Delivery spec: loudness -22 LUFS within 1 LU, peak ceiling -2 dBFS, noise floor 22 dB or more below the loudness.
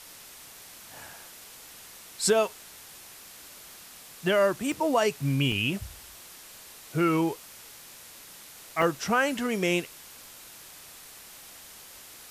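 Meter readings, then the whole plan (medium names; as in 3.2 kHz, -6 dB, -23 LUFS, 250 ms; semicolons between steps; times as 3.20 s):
dropouts 3; longest dropout 1.9 ms; noise floor -48 dBFS; noise floor target -49 dBFS; loudness -26.5 LUFS; peak level -11.5 dBFS; loudness target -22.0 LUFS
-> interpolate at 4.72/5.52/8.82 s, 1.9 ms; noise print and reduce 6 dB; trim +4.5 dB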